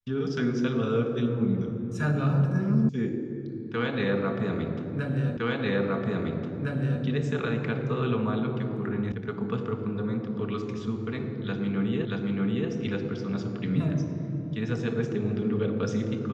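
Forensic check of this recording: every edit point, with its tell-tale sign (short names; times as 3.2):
2.89 sound cut off
5.37 repeat of the last 1.66 s
9.12 sound cut off
12.05 repeat of the last 0.63 s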